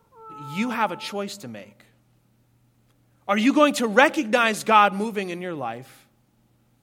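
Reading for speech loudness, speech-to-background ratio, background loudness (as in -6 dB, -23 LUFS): -21.5 LUFS, 19.5 dB, -41.0 LUFS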